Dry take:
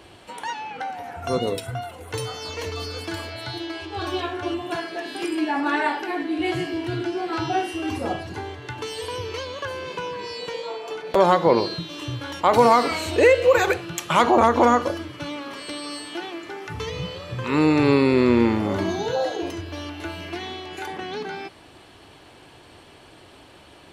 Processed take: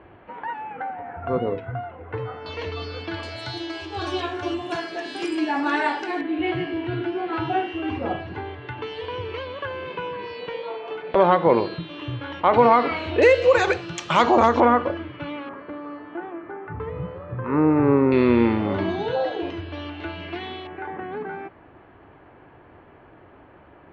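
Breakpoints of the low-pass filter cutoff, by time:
low-pass filter 24 dB per octave
2,000 Hz
from 0:02.46 3,800 Hz
from 0:03.23 7,900 Hz
from 0:06.21 3,100 Hz
from 0:13.22 6,200 Hz
from 0:14.60 2,800 Hz
from 0:15.49 1,600 Hz
from 0:18.12 3,500 Hz
from 0:20.67 1,900 Hz

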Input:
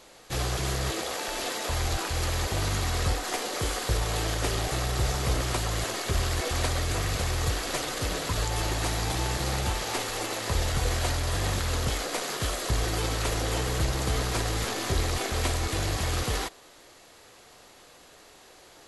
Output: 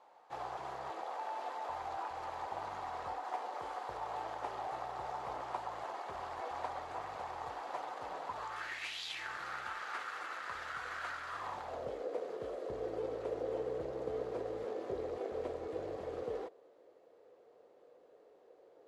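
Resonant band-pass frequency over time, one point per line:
resonant band-pass, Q 3.9
0:08.35 860 Hz
0:09.06 3,700 Hz
0:09.29 1,400 Hz
0:11.27 1,400 Hz
0:11.96 480 Hz

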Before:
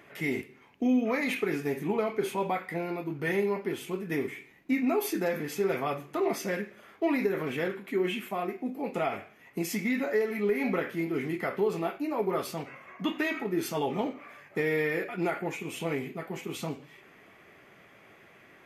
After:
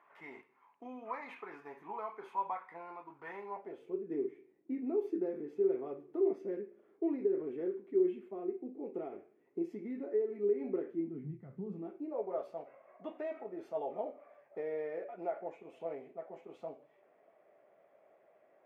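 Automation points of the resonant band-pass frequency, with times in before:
resonant band-pass, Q 4.6
0:03.44 1,000 Hz
0:04.01 370 Hz
0:10.91 370 Hz
0:11.41 110 Hz
0:12.25 610 Hz

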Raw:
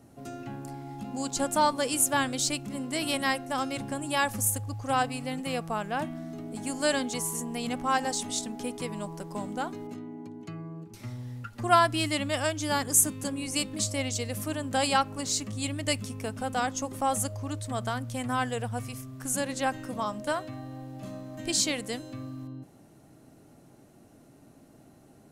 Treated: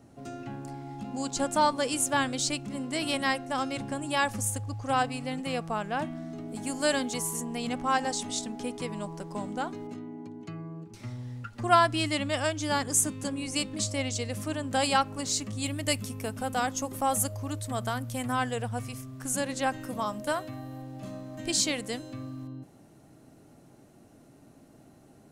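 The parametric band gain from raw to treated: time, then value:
parametric band 13,000 Hz 0.51 octaves
−12.5 dB
from 0:06.49 −1 dB
from 0:07.41 −12 dB
from 0:14.69 −3.5 dB
from 0:15.66 +8 dB
from 0:18.32 −3 dB
from 0:19.81 +8 dB
from 0:20.82 −3 dB

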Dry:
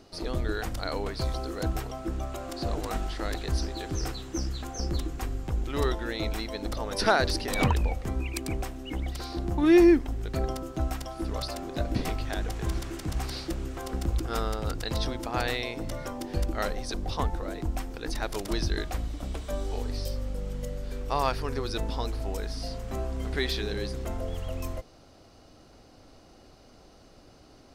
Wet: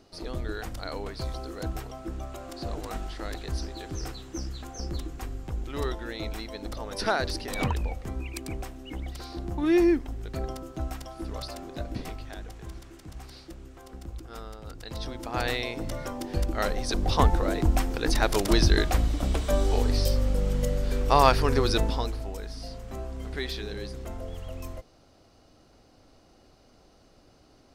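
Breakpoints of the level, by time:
0:11.60 −3.5 dB
0:12.77 −11.5 dB
0:14.64 −11.5 dB
0:15.48 +1 dB
0:16.50 +1 dB
0:17.23 +8 dB
0:21.71 +8 dB
0:22.32 −4 dB

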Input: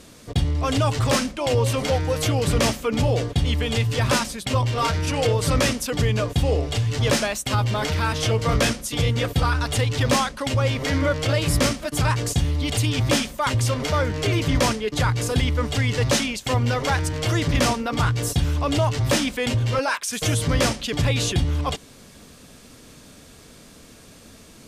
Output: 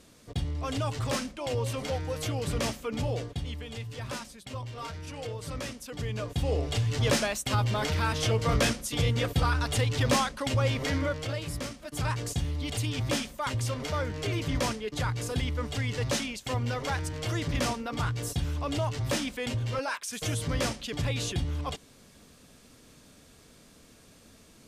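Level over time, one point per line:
0:03.15 −10 dB
0:03.65 −16.5 dB
0:05.76 −16.5 dB
0:06.69 −5 dB
0:10.82 −5 dB
0:11.70 −17 dB
0:12.04 −9 dB

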